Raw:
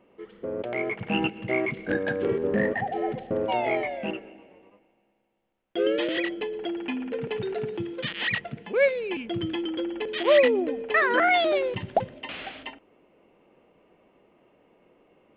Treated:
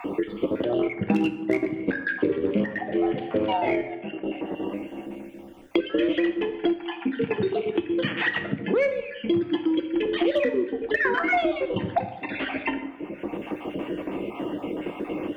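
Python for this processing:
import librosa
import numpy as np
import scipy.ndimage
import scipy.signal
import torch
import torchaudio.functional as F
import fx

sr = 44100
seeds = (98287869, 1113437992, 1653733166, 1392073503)

y = fx.spec_dropout(x, sr, seeds[0], share_pct=39)
y = fx.graphic_eq_31(y, sr, hz=(100, 200, 315, 4000), db=(6, 4, 12, -6))
y = fx.transient(y, sr, attack_db=4, sustain_db=-7, at=(0.78, 2.09))
y = fx.level_steps(y, sr, step_db=21, at=(3.81, 4.26))
y = fx.cheby_harmonics(y, sr, harmonics=(5, 7), levels_db=(-44, -33), full_scale_db=-9.5)
y = fx.rev_plate(y, sr, seeds[1], rt60_s=0.68, hf_ratio=0.75, predelay_ms=0, drr_db=6.5)
y = fx.band_squash(y, sr, depth_pct=100)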